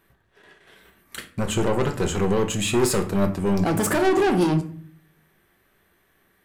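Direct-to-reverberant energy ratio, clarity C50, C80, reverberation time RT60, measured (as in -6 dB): 5.5 dB, 12.5 dB, 16.5 dB, 0.50 s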